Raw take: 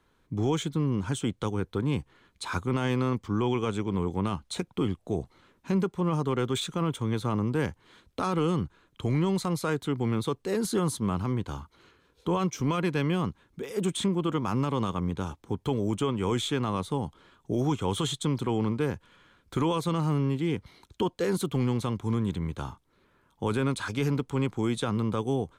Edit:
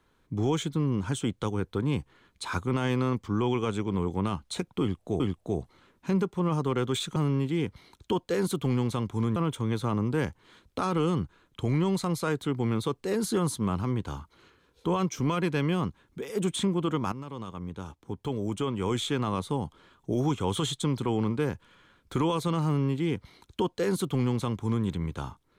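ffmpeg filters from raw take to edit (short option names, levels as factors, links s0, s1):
-filter_complex "[0:a]asplit=5[s0][s1][s2][s3][s4];[s0]atrim=end=5.202[s5];[s1]atrim=start=4.808:end=6.772[s6];[s2]atrim=start=20.058:end=22.262[s7];[s3]atrim=start=6.768:end=14.53,asetpts=PTS-STARTPTS,afade=t=out:st=7.758:d=0.004:c=hsin:silence=0.211349[s8];[s4]atrim=start=14.53,asetpts=PTS-STARTPTS,afade=t=in:d=2.09:silence=0.211349[s9];[s5][s6]acrossfade=d=0.004:c1=hsin:c2=hsin[s10];[s10][s7]acrossfade=d=0.004:c1=hsin:c2=hsin[s11];[s8][s9]concat=n=2:v=0:a=1[s12];[s11][s12]acrossfade=d=0.004:c1=hsin:c2=hsin"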